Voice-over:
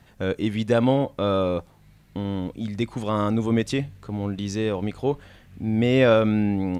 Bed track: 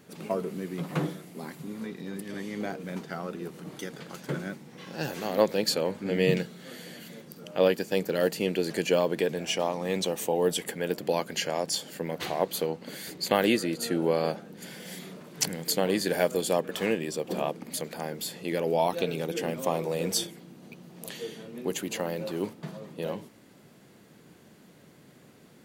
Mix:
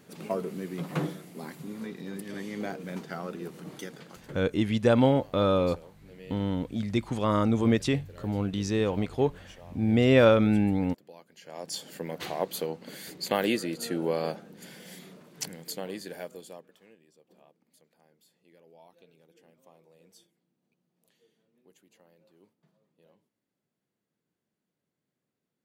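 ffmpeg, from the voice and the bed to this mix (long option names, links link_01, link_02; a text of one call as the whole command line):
ffmpeg -i stem1.wav -i stem2.wav -filter_complex "[0:a]adelay=4150,volume=-1.5dB[link_01];[1:a]volume=19dB,afade=type=out:start_time=3.71:duration=0.79:silence=0.0794328,afade=type=in:start_time=11.41:duration=0.49:silence=0.1,afade=type=out:start_time=14.32:duration=2.48:silence=0.0421697[link_02];[link_01][link_02]amix=inputs=2:normalize=0" out.wav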